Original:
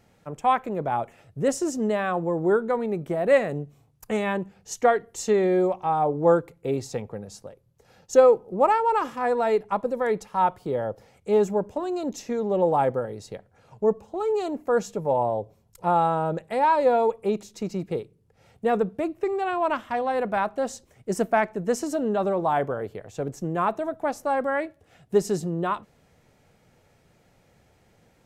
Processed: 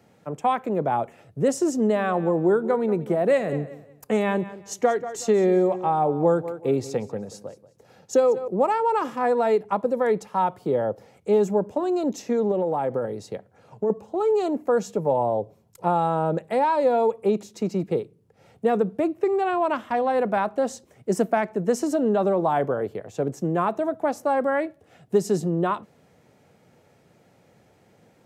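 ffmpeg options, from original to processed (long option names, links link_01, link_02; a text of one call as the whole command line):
ffmpeg -i in.wav -filter_complex "[0:a]asettb=1/sr,asplit=3[link_01][link_02][link_03];[link_01]atrim=end=1.764[link_04];[link_02]atrim=start=1.76:end=8.48,asetpts=PTS-STARTPTS,afade=type=in:duration=0.004:curve=qsin,afade=type=out:start_time=6.716:duration=0.004:curve=qsin,aecho=1:1:184|368|552:0.141|0.0381|0.0103,atrim=end_sample=296352[link_05];[link_03]atrim=start=8.476[link_06];[link_04][link_05]acrossfade=duration=0.004:curve1=hsin:curve2=qsin[link_07];[link_07][link_06]acrossfade=duration=0.004:curve1=qsin:curve2=hsin,asettb=1/sr,asplit=3[link_08][link_09][link_10];[link_08]atrim=end=12.514[link_11];[link_09]atrim=start=12.51:end=13.9,asetpts=PTS-STARTPTS,afade=type=in:duration=0.004:curve=qsin,afade=type=out:start_time=1.386:duration=0.004:curve=qsin,acompressor=threshold=-25dB:ratio=5:attack=3.2:release=140:knee=1:detection=peak[link_12];[link_10]atrim=start=13.896[link_13];[link_11][link_12]acrossfade=duration=0.004:curve1=hsin:curve2=qsin[link_14];[link_14][link_13]acrossfade=duration=0.004:curve1=qsin:curve2=hsin,acrossover=split=180|3000[link_15][link_16][link_17];[link_16]acompressor=threshold=-22dB:ratio=4[link_18];[link_15][link_18][link_17]amix=inputs=3:normalize=0,highpass=98,equalizer=frequency=340:width=0.36:gain=5" out.wav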